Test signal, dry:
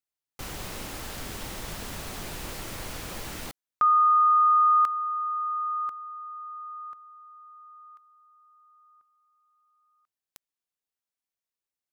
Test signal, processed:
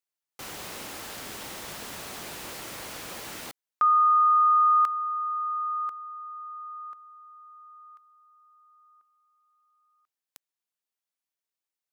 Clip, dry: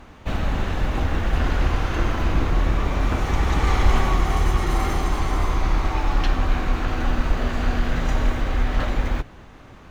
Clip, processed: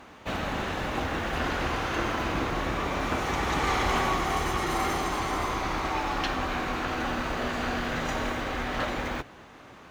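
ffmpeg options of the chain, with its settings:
-af "highpass=f=310:p=1"

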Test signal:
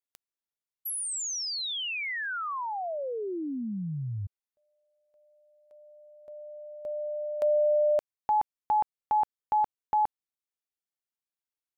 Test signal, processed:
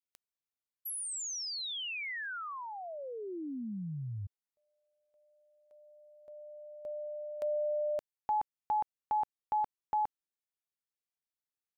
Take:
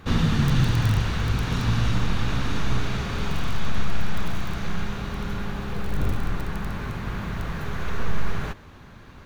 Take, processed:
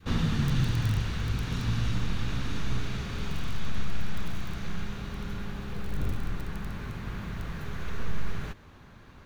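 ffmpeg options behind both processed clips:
-af "adynamicequalizer=threshold=0.01:dfrequency=820:dqfactor=0.72:tfrequency=820:tqfactor=0.72:attack=5:release=100:ratio=0.375:range=2.5:mode=cutabove:tftype=bell,volume=-5.5dB"

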